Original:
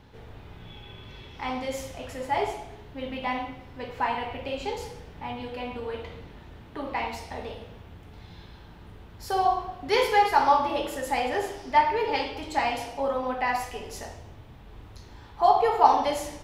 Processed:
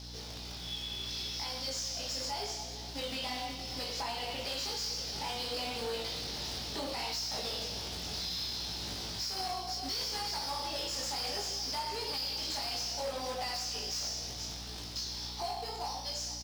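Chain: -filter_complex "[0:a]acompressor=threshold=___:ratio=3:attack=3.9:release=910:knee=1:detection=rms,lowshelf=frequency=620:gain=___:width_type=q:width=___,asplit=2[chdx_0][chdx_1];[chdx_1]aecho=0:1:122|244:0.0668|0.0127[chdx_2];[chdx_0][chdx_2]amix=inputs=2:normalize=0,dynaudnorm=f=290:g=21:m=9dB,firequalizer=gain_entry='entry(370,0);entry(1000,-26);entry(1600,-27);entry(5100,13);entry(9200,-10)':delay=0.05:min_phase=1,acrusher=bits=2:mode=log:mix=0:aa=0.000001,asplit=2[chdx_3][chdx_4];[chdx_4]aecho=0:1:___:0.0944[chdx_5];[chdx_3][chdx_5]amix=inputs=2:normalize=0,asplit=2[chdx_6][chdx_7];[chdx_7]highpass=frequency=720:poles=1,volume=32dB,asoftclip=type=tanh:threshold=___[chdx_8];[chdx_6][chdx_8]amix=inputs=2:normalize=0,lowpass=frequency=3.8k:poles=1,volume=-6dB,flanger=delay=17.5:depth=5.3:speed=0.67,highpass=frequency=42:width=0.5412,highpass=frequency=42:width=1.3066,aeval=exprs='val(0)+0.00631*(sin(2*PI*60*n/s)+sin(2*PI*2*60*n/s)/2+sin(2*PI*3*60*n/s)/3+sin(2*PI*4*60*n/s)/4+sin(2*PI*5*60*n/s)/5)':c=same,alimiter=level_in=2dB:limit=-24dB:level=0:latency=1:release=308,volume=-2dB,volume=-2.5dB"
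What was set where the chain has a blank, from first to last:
-34dB, -13.5, 1.5, 470, -17.5dB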